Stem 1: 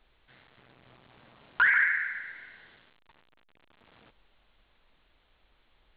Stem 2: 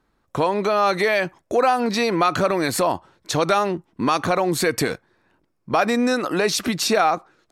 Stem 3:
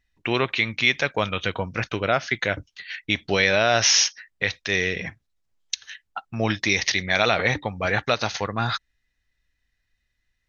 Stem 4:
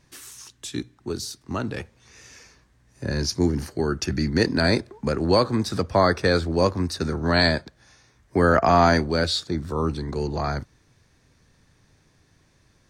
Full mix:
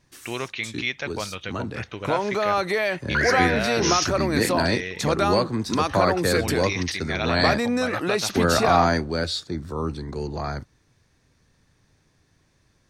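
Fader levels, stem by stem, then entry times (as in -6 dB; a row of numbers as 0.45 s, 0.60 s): -1.5 dB, -4.0 dB, -7.5 dB, -3.0 dB; 1.55 s, 1.70 s, 0.00 s, 0.00 s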